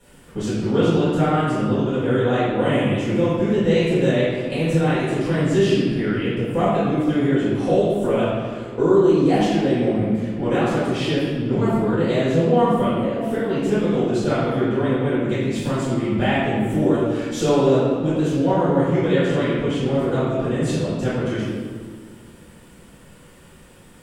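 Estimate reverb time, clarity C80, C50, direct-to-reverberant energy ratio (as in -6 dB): 1.8 s, 0.0 dB, -3.0 dB, -12.5 dB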